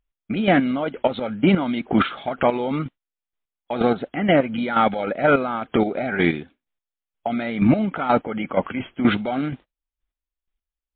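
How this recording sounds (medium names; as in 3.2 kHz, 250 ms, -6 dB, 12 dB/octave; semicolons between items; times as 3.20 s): chopped level 2.1 Hz, depth 65%, duty 25%; MP3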